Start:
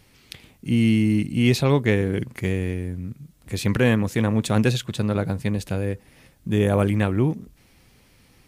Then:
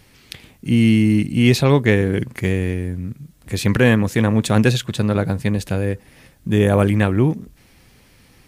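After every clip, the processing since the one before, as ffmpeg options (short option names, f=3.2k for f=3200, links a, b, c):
-af "equalizer=f=1.7k:t=o:w=0.26:g=2.5,volume=4.5dB"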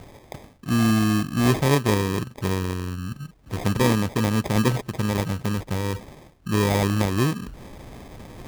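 -af "areverse,acompressor=mode=upward:threshold=-20dB:ratio=2.5,areverse,acrusher=samples=31:mix=1:aa=0.000001,volume=-5.5dB"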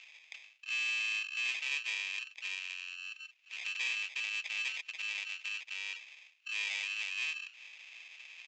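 -af "aresample=16000,asoftclip=type=tanh:threshold=-22.5dB,aresample=44100,highpass=f=2.6k:t=q:w=9.5,volume=-7dB"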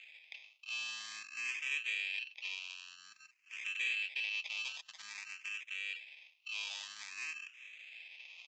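-filter_complex "[0:a]asplit=2[a][b];[b]afreqshift=0.51[c];[a][c]amix=inputs=2:normalize=1"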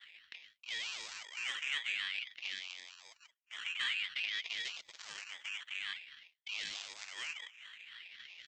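-af "agate=range=-33dB:threshold=-55dB:ratio=3:detection=peak,aeval=exprs='val(0)*sin(2*PI*420*n/s+420*0.8/3.9*sin(2*PI*3.9*n/s))':c=same,volume=3dB"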